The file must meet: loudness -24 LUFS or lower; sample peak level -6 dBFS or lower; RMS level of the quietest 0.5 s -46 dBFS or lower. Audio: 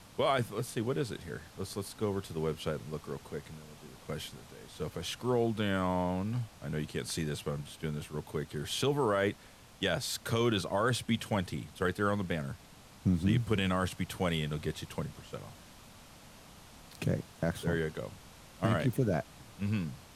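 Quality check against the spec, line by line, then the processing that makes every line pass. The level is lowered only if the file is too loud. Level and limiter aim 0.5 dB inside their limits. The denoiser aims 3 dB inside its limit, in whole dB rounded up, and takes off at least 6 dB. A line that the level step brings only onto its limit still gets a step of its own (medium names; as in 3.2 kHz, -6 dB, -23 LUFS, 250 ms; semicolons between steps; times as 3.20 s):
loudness -34.0 LUFS: pass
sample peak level -18.0 dBFS: pass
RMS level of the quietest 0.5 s -54 dBFS: pass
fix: none needed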